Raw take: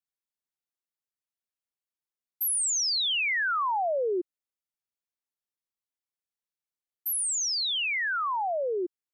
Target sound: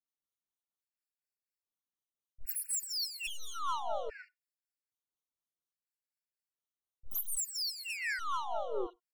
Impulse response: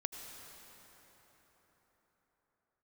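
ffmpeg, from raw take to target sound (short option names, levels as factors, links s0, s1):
-filter_complex "[0:a]adynamicequalizer=threshold=0.00562:dfrequency=730:dqfactor=4.3:tfrequency=730:tqfactor=4.3:attack=5:release=100:ratio=0.375:range=2:mode=cutabove:tftype=bell,aeval=exprs='(tanh(50.1*val(0)+0.65)-tanh(0.65))/50.1':c=same,asplit=2[s0][s1];[s1]asetrate=58866,aresample=44100,atempo=0.749154,volume=0.562[s2];[s0][s2]amix=inputs=2:normalize=0,aeval=exprs='0.0531*(cos(1*acos(clip(val(0)/0.0531,-1,1)))-cos(1*PI/2))+0.00168*(cos(6*acos(clip(val(0)/0.0531,-1,1)))-cos(6*PI/2))':c=same,tremolo=f=4.1:d=0.58,acrossover=split=610|2700[s3][s4][s5];[s4]adelay=40[s6];[s5]adelay=80[s7];[s3][s6][s7]amix=inputs=3:normalize=0,asplit=2[s8][s9];[1:a]atrim=start_sample=2205,atrim=end_sample=4410[s10];[s9][s10]afir=irnorm=-1:irlink=0,volume=0.188[s11];[s8][s11]amix=inputs=2:normalize=0,afftfilt=real='re*gt(sin(2*PI*0.61*pts/sr)*(1-2*mod(floor(b*sr/1024/1400),2)),0)':imag='im*gt(sin(2*PI*0.61*pts/sr)*(1-2*mod(floor(b*sr/1024/1400),2)),0)':win_size=1024:overlap=0.75,volume=1.19"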